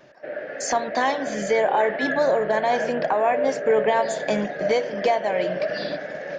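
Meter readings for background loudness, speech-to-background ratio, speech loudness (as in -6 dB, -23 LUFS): -29.0 LUFS, 5.5 dB, -23.5 LUFS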